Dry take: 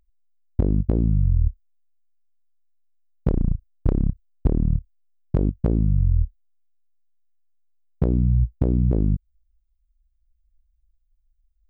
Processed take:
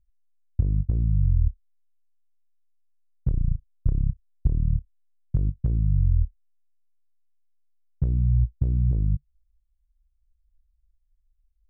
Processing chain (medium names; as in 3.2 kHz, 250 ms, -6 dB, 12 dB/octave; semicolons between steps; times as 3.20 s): FFT filter 140 Hz 0 dB, 210 Hz -12 dB, 350 Hz -15 dB, 830 Hz -17 dB, 1.7 kHz -14 dB, 2.7 kHz -20 dB; trim -1.5 dB